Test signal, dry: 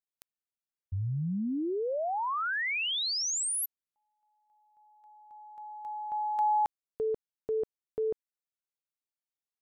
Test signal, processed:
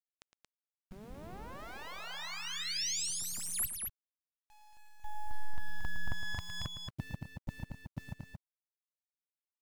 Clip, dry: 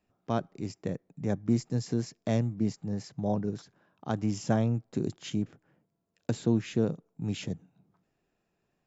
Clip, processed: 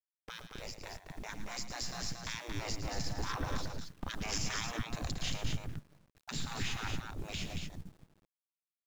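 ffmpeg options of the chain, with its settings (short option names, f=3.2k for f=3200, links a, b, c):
-filter_complex "[0:a]aeval=exprs='if(lt(val(0),0),0.447*val(0),val(0))':c=same,agate=range=-19dB:threshold=-60dB:ratio=16:release=25:detection=rms,lowpass=5.9k,afftfilt=real='re*lt(hypot(re,im),0.0282)':imag='im*lt(hypot(re,im),0.0282)':win_size=1024:overlap=0.75,asubboost=boost=11:cutoff=150,asplit=2[a][b];[b]acompressor=threshold=-54dB:ratio=20:attack=0.27:release=320:knee=6:detection=peak,volume=2dB[c];[a][c]amix=inputs=2:normalize=0,alimiter=level_in=13dB:limit=-24dB:level=0:latency=1:release=240,volume=-13dB,dynaudnorm=f=390:g=11:m=7dB,acrusher=bits=10:mix=0:aa=0.000001,aecho=1:1:110.8|227.4:0.282|0.562,adynamicequalizer=threshold=0.00178:dfrequency=2700:dqfactor=0.7:tfrequency=2700:tqfactor=0.7:attack=5:release=100:ratio=0.375:range=1.5:mode=boostabove:tftype=highshelf,volume=4dB"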